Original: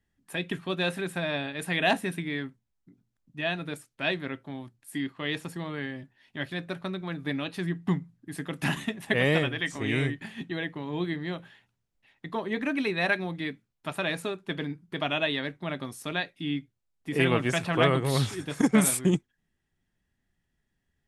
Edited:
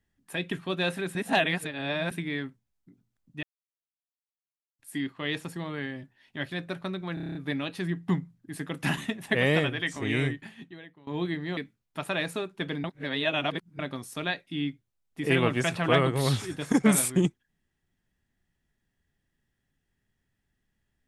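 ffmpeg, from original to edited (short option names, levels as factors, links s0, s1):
-filter_complex "[0:a]asplit=16[s0][s1][s2][s3][s4][s5][s6][s7][s8][s9][s10][s11][s12][s13][s14][s15];[s0]atrim=end=1.152[s16];[s1]atrim=start=1.148:end=2.112,asetpts=PTS-STARTPTS,areverse[s17];[s2]atrim=start=2.108:end=3.43,asetpts=PTS-STARTPTS,afade=t=out:st=1.318:d=0.004:c=hsin[s18];[s3]atrim=start=3.43:end=4.79,asetpts=PTS-STARTPTS,volume=0[s19];[s4]atrim=start=4.79:end=7.172,asetpts=PTS-STARTPTS,afade=t=in:d=0.004:c=hsin[s20];[s5]atrim=start=7.138:end=7.172[s21];[s6]atrim=start=7.138:end=7.172[s22];[s7]atrim=start=7.138:end=7.172[s23];[s8]atrim=start=7.138:end=7.172[s24];[s9]atrim=start=7.138:end=7.172[s25];[s10]atrim=start=7.138:end=7.172[s26];[s11]atrim=start=7.138:end=10.86,asetpts=PTS-STARTPTS,afade=t=out:st=2.912:d=0.81:c=qua:silence=0.105925[s27];[s12]atrim=start=10.86:end=11.362,asetpts=PTS-STARTPTS,afade=t=in:d=0.004:c=hsin:silence=0.105925[s28];[s13]atrim=start=13.458:end=14.732[s29];[s14]atrim=start=14.728:end=15.682,asetpts=PTS-STARTPTS,areverse[s30];[s15]atrim=start=15.678[s31];[s16][s17]acrossfade=d=0.004:c1=hsin:c2=hsin[s32];[s18][s19][s20]concat=n=3:v=0:a=1[s33];[s32][s33]acrossfade=d=0.004:c1=hsin:c2=hsin[s34];[s34][s21]acrossfade=d=0.004:c1=hsin:c2=hsin[s35];[s35][s22]acrossfade=d=0.004:c1=hsin:c2=hsin[s36];[s36][s23]acrossfade=d=0.004:c1=hsin:c2=hsin[s37];[s37][s24]acrossfade=d=0.004:c1=hsin:c2=hsin[s38];[s38][s25]acrossfade=d=0.004:c1=hsin:c2=hsin[s39];[s39][s26]acrossfade=d=0.004:c1=hsin:c2=hsin[s40];[s27][s28]concat=n=2:v=0:a=1[s41];[s40][s41]acrossfade=d=0.004:c1=hsin:c2=hsin[s42];[s42][s29]acrossfade=d=0.004:c1=hsin:c2=hsin[s43];[s43][s30]acrossfade=d=0.004:c1=hsin:c2=hsin[s44];[s44][s31]acrossfade=d=0.004:c1=hsin:c2=hsin"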